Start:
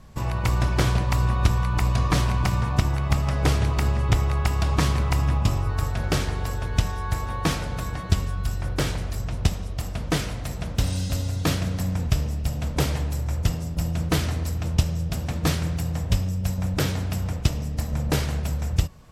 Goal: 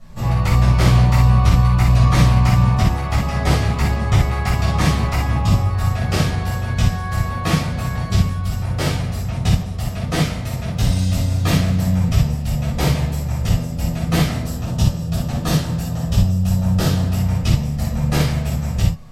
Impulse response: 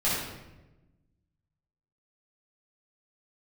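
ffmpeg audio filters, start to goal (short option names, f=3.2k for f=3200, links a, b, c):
-filter_complex "[0:a]asettb=1/sr,asplit=3[a][b][c];[a]atrim=end=14.414[d];[b]atrim=start=14.41:end=17.13,asetpts=PTS-STARTPTS,afade=t=in:d=0.004:c=qsin,afade=t=out:st=2.716:d=0.004:c=qsin,equalizer=f=2.2k:t=o:w=0.34:g=-9.5[e];[c]atrim=start=17.126[f];[d][e]acrossfade=d=0.004:c1=hsin:c2=qsin[g];[g][f]acrossfade=d=0.004:c1=qsin:c2=hsin[h];[1:a]atrim=start_sample=2205,atrim=end_sample=3969[i];[h][i]afir=irnorm=-1:irlink=0,volume=-4.5dB"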